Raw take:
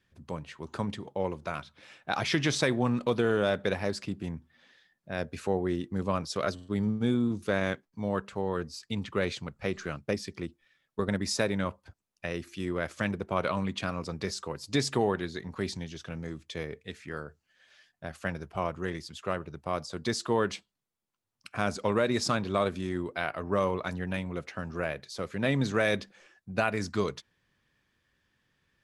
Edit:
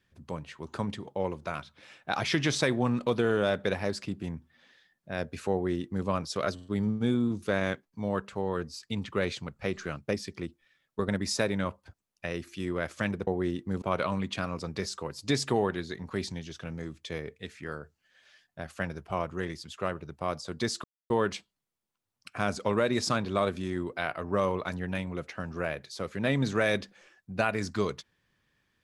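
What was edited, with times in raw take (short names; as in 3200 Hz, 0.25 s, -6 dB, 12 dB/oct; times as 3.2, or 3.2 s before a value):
5.52–6.07 copy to 13.27
20.29 insert silence 0.26 s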